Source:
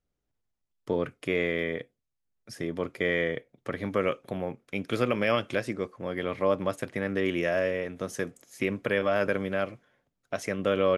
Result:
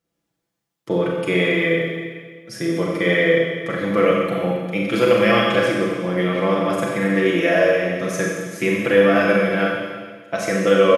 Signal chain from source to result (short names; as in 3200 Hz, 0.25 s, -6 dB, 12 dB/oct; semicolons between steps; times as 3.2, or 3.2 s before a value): HPF 110 Hz; comb 6 ms, depth 75%; Schroeder reverb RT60 1.6 s, combs from 30 ms, DRR -2.5 dB; gain +5 dB